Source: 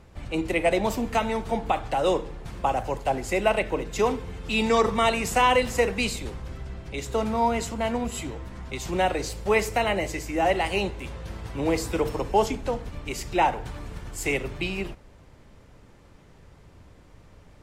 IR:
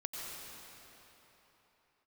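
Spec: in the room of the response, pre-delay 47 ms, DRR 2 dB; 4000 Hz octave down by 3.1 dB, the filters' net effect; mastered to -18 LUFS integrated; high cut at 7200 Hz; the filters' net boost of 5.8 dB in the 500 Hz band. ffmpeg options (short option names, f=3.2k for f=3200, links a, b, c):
-filter_complex "[0:a]lowpass=7.2k,equalizer=f=500:t=o:g=7,equalizer=f=4k:t=o:g=-4.5,asplit=2[a][b];[1:a]atrim=start_sample=2205,adelay=47[c];[b][c]afir=irnorm=-1:irlink=0,volume=-3dB[d];[a][d]amix=inputs=2:normalize=0,volume=2.5dB"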